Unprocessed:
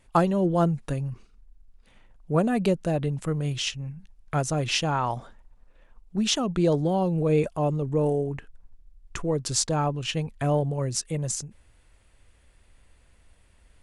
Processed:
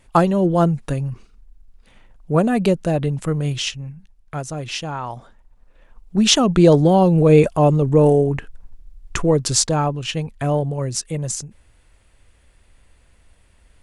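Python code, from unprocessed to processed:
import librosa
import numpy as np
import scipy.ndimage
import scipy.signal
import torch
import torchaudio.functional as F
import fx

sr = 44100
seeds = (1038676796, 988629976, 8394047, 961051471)

y = fx.gain(x, sr, db=fx.line((3.5, 6.0), (4.36, -2.0), (5.12, -2.0), (6.34, 10.5), (9.24, 10.5), (10.01, 4.0)))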